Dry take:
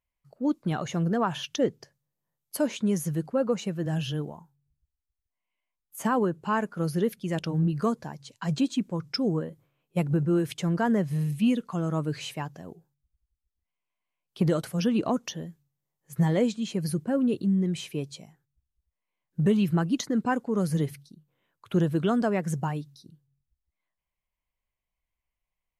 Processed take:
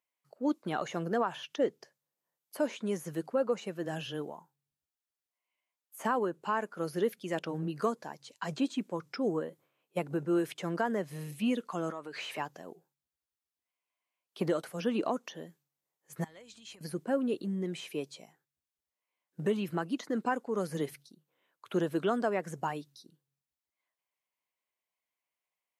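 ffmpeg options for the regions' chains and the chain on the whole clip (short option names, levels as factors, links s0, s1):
-filter_complex "[0:a]asettb=1/sr,asplit=3[s0][s1][s2];[s0]atrim=end=11.904[s3];[s1]atrim=start=11.9:end=12.38,asetpts=PTS-STARTPTS,afade=t=in:d=0.004:c=qsin,afade=t=out:st=0.476:d=0.004:c=qsin,acompressor=threshold=0.00891:ratio=10:attack=3.2:release=140:knee=1:detection=peak,asplit=2[s4][s5];[s5]highpass=f=720:p=1,volume=10,asoftclip=type=tanh:threshold=0.0841[s6];[s4][s6]amix=inputs=2:normalize=0,lowpass=f=3300:p=1,volume=0.501[s7];[s2]atrim=start=12.376[s8];[s3][s7]acrossfade=d=0.004:c1=hsin:c2=qsin[s9];[s9][s8]acrossfade=d=0.004:c1=qsin:c2=hsin,asettb=1/sr,asplit=3[s10][s11][s12];[s10]atrim=end=16.244[s13];[s11]atrim=start=16.24:end=16.81,asetpts=PTS-STARTPTS,afade=t=in:d=0.004:c=qsin,afade=t=out:st=0.566:d=0.004:c=qsin,acompressor=threshold=0.0158:ratio=16:attack=3.2:release=140:knee=1:detection=peak,aeval=exprs='val(0)+0.00355*(sin(2*PI*60*n/s)+sin(2*PI*2*60*n/s)/2+sin(2*PI*3*60*n/s)/3+sin(2*PI*4*60*n/s)/4+sin(2*PI*5*60*n/s)/5)':c=same,equalizer=f=310:t=o:w=3:g=-13[s14];[s12]atrim=start=16.806[s15];[s13][s14]acrossfade=d=0.004:c1=hsin:c2=qsin[s16];[s16][s15]acrossfade=d=0.004:c1=qsin:c2=hsin,highpass=340,acrossover=split=2500[s17][s18];[s18]acompressor=threshold=0.00562:ratio=4:attack=1:release=60[s19];[s17][s19]amix=inputs=2:normalize=0,alimiter=limit=0.106:level=0:latency=1:release=472"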